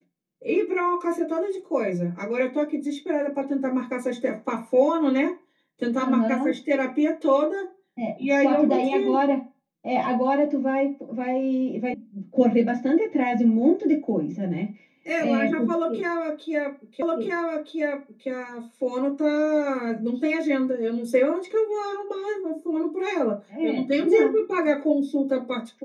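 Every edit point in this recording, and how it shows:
11.94 sound cut off
17.02 repeat of the last 1.27 s

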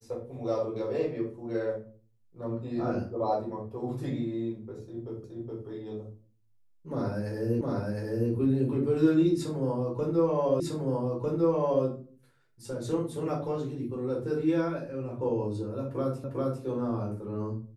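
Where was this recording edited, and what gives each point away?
5.24 repeat of the last 0.42 s
7.61 repeat of the last 0.71 s
10.6 repeat of the last 1.25 s
16.24 repeat of the last 0.4 s

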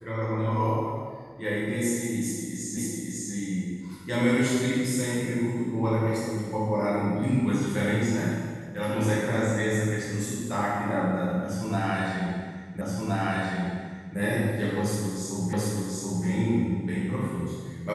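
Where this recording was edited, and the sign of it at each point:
2.77 repeat of the last 0.55 s
12.81 repeat of the last 1.37 s
15.53 repeat of the last 0.73 s

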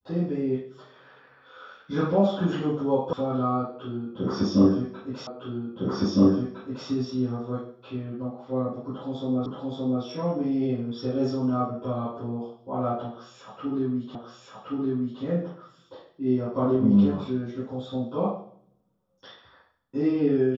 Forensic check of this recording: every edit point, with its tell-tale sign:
3.13 sound cut off
5.27 repeat of the last 1.61 s
9.46 repeat of the last 0.57 s
14.15 repeat of the last 1.07 s

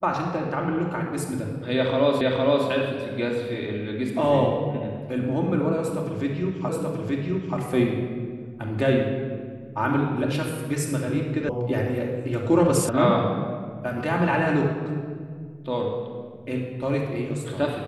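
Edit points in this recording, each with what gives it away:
2.21 repeat of the last 0.46 s
6.69 repeat of the last 0.88 s
11.49 sound cut off
12.89 sound cut off

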